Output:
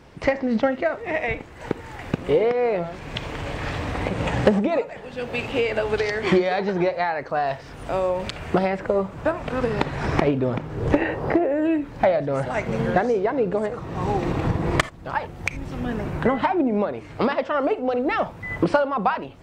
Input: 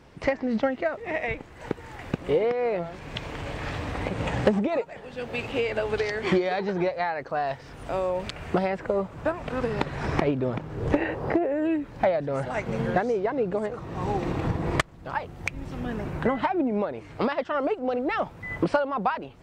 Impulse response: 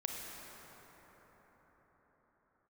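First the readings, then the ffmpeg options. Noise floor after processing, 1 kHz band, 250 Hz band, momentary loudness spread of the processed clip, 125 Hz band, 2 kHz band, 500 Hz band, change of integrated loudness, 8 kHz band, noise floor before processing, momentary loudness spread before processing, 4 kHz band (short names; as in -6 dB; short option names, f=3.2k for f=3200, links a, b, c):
-40 dBFS, +4.0 dB, +4.0 dB, 9 LU, +4.0 dB, +4.0 dB, +4.0 dB, +4.0 dB, n/a, -46 dBFS, 9 LU, +4.0 dB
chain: -filter_complex "[0:a]asplit=2[a][b];[1:a]atrim=start_sample=2205,atrim=end_sample=3969[c];[b][c]afir=irnorm=-1:irlink=0,volume=-3dB[d];[a][d]amix=inputs=2:normalize=0"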